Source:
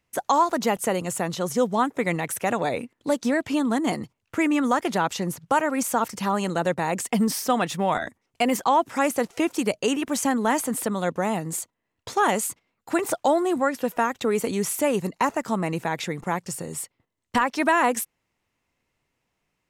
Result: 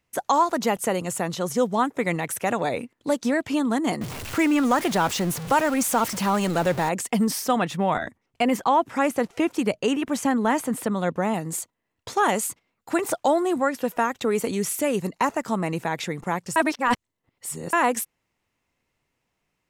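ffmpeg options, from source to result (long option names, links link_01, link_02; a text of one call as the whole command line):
ffmpeg -i in.wav -filter_complex "[0:a]asettb=1/sr,asplit=3[link_01][link_02][link_03];[link_01]atrim=end=4.014[link_04];[link_02]atrim=start=4.01:end=6.89,asetpts=PTS-STARTPTS,afade=type=in:duration=0.004:curve=qsin,afade=type=out:start_time=2.876:duration=0.004:curve=qsin,aeval=exprs='val(0)+0.5*0.0398*sgn(val(0))':channel_layout=same[link_05];[link_03]atrim=start=6.886[link_06];[link_04][link_05]acrossfade=duration=0.004:curve1=hsin:curve2=qsin[link_07];[link_07][link_06]acrossfade=duration=0.004:curve1=qsin:curve2=hsin,asettb=1/sr,asplit=3[link_08][link_09][link_10];[link_08]atrim=end=7.564[link_11];[link_09]atrim=start=7.56:end=11.34,asetpts=PTS-STARTPTS,afade=type=in:duration=0.004:curve=qsin,afade=type=out:start_time=3.776:duration=0.004:curve=qsin,bass=frequency=250:gain=3,treble=frequency=4000:gain=-6[link_12];[link_10]atrim=start=11.336[link_13];[link_11][link_12]acrossfade=duration=0.004:curve1=hsin:curve2=qsin[link_14];[link_14][link_13]acrossfade=duration=0.004:curve1=qsin:curve2=hsin,asettb=1/sr,asplit=3[link_15][link_16][link_17];[link_15]atrim=end=14.554[link_18];[link_16]atrim=start=14.55:end=15,asetpts=PTS-STARTPTS,afade=type=in:duration=0.004:curve=qsin,afade=type=out:start_time=0.446:duration=0.004:curve=qsin,equalizer=frequency=910:width_type=o:width=0.83:gain=-6[link_19];[link_17]atrim=start=14.996[link_20];[link_18][link_19]acrossfade=duration=0.004:curve1=hsin:curve2=qsin[link_21];[link_21][link_20]acrossfade=duration=0.004:curve1=qsin:curve2=hsin,asplit=3[link_22][link_23][link_24];[link_22]atrim=end=16.562[link_25];[link_23]atrim=start=16.558:end=17.732,asetpts=PTS-STARTPTS,areverse[link_26];[link_24]atrim=start=17.728[link_27];[link_25][link_26]acrossfade=duration=0.004:curve1=hsin:curve2=hsin[link_28];[link_28][link_27]acrossfade=duration=0.004:curve1=hsin:curve2=hsin" out.wav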